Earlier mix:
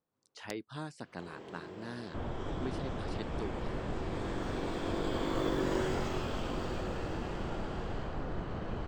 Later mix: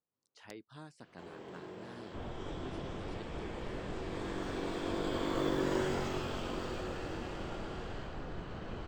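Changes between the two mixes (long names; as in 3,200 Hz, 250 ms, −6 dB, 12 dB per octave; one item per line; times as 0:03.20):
speech −9.0 dB
second sound −5.5 dB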